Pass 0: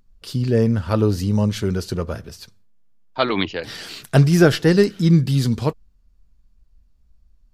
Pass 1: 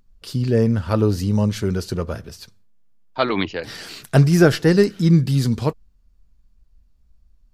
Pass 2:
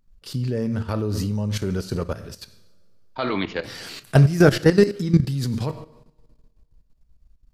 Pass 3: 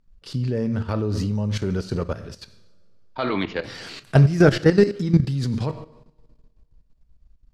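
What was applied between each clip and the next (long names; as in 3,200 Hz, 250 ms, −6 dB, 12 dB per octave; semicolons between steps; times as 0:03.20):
dynamic equaliser 3,300 Hz, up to −4 dB, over −41 dBFS, Q 2.5
coupled-rooms reverb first 0.68 s, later 2.3 s, from −24 dB, DRR 9.5 dB; output level in coarse steps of 13 dB; level +2 dB
high-frequency loss of the air 63 metres; in parallel at −10 dB: soft clipping −13.5 dBFS, distortion −10 dB; on the sum: level −1.5 dB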